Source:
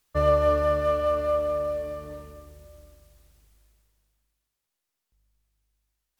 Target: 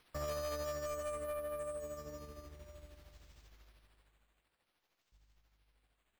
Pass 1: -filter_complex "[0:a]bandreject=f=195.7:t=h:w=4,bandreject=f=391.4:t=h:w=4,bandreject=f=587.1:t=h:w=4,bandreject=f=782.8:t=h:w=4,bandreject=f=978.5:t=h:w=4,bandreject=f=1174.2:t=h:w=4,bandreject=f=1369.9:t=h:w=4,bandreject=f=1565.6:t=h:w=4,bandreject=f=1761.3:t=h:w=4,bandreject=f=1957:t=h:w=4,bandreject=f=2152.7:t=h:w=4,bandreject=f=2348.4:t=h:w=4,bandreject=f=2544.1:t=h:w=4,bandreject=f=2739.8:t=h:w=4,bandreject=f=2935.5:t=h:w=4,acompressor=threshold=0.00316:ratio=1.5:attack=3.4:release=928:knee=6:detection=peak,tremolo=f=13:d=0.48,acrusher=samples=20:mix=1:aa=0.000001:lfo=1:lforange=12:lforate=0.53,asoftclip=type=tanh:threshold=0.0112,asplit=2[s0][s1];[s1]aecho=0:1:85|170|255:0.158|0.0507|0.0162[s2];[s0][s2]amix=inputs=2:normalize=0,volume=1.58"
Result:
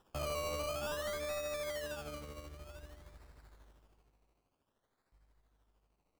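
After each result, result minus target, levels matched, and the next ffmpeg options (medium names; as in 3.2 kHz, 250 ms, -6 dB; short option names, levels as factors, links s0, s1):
decimation with a swept rate: distortion +13 dB; compression: peak gain reduction -3 dB
-filter_complex "[0:a]bandreject=f=195.7:t=h:w=4,bandreject=f=391.4:t=h:w=4,bandreject=f=587.1:t=h:w=4,bandreject=f=782.8:t=h:w=4,bandreject=f=978.5:t=h:w=4,bandreject=f=1174.2:t=h:w=4,bandreject=f=1369.9:t=h:w=4,bandreject=f=1565.6:t=h:w=4,bandreject=f=1761.3:t=h:w=4,bandreject=f=1957:t=h:w=4,bandreject=f=2152.7:t=h:w=4,bandreject=f=2348.4:t=h:w=4,bandreject=f=2544.1:t=h:w=4,bandreject=f=2739.8:t=h:w=4,bandreject=f=2935.5:t=h:w=4,acompressor=threshold=0.00316:ratio=1.5:attack=3.4:release=928:knee=6:detection=peak,tremolo=f=13:d=0.48,acrusher=samples=6:mix=1:aa=0.000001:lfo=1:lforange=3.6:lforate=0.53,asoftclip=type=tanh:threshold=0.0112,asplit=2[s0][s1];[s1]aecho=0:1:85|170|255:0.158|0.0507|0.0162[s2];[s0][s2]amix=inputs=2:normalize=0,volume=1.58"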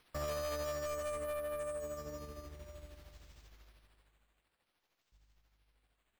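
compression: peak gain reduction -3 dB
-filter_complex "[0:a]bandreject=f=195.7:t=h:w=4,bandreject=f=391.4:t=h:w=4,bandreject=f=587.1:t=h:w=4,bandreject=f=782.8:t=h:w=4,bandreject=f=978.5:t=h:w=4,bandreject=f=1174.2:t=h:w=4,bandreject=f=1369.9:t=h:w=4,bandreject=f=1565.6:t=h:w=4,bandreject=f=1761.3:t=h:w=4,bandreject=f=1957:t=h:w=4,bandreject=f=2152.7:t=h:w=4,bandreject=f=2348.4:t=h:w=4,bandreject=f=2544.1:t=h:w=4,bandreject=f=2739.8:t=h:w=4,bandreject=f=2935.5:t=h:w=4,acompressor=threshold=0.00106:ratio=1.5:attack=3.4:release=928:knee=6:detection=peak,tremolo=f=13:d=0.48,acrusher=samples=6:mix=1:aa=0.000001:lfo=1:lforange=3.6:lforate=0.53,asoftclip=type=tanh:threshold=0.0112,asplit=2[s0][s1];[s1]aecho=0:1:85|170|255:0.158|0.0507|0.0162[s2];[s0][s2]amix=inputs=2:normalize=0,volume=1.58"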